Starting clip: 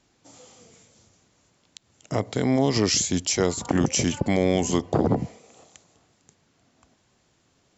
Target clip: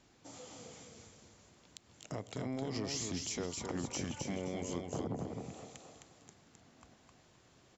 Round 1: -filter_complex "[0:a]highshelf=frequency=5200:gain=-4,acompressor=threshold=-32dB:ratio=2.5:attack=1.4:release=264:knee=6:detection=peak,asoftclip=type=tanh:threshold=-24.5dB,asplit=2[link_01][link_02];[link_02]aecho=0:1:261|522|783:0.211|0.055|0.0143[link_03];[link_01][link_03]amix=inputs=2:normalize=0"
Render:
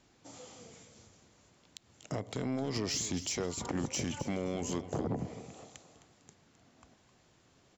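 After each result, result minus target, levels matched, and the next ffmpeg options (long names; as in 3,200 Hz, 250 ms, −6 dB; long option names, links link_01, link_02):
echo-to-direct −9 dB; downward compressor: peak gain reduction −5.5 dB
-filter_complex "[0:a]highshelf=frequency=5200:gain=-4,acompressor=threshold=-32dB:ratio=2.5:attack=1.4:release=264:knee=6:detection=peak,asoftclip=type=tanh:threshold=-24.5dB,asplit=2[link_01][link_02];[link_02]aecho=0:1:261|522|783|1044:0.596|0.155|0.0403|0.0105[link_03];[link_01][link_03]amix=inputs=2:normalize=0"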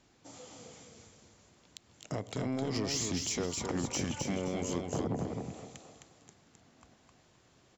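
downward compressor: peak gain reduction −5.5 dB
-filter_complex "[0:a]highshelf=frequency=5200:gain=-4,acompressor=threshold=-41.5dB:ratio=2.5:attack=1.4:release=264:knee=6:detection=peak,asoftclip=type=tanh:threshold=-24.5dB,asplit=2[link_01][link_02];[link_02]aecho=0:1:261|522|783|1044:0.596|0.155|0.0403|0.0105[link_03];[link_01][link_03]amix=inputs=2:normalize=0"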